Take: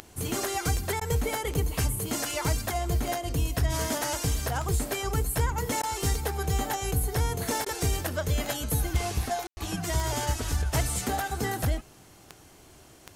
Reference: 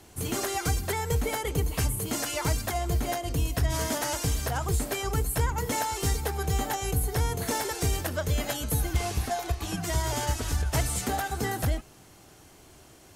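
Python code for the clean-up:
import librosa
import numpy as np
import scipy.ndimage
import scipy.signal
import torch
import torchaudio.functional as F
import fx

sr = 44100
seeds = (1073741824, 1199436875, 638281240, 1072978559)

y = fx.fix_declick_ar(x, sr, threshold=10.0)
y = fx.fix_ambience(y, sr, seeds[0], print_start_s=12.53, print_end_s=13.03, start_s=9.47, end_s=9.57)
y = fx.fix_interpolate(y, sr, at_s=(1.0, 5.82, 7.65), length_ms=11.0)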